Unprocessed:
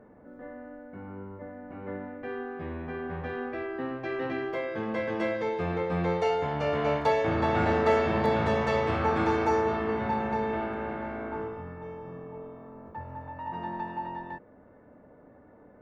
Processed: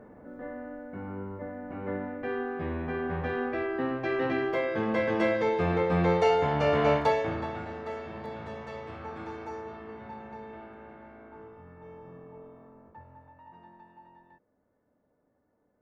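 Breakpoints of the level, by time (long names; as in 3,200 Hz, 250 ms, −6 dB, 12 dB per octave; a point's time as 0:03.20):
0:06.92 +3.5 dB
0:07.35 −5.5 dB
0:07.67 −14 dB
0:11.33 −14 dB
0:11.96 −6 dB
0:12.63 −6 dB
0:13.77 −19 dB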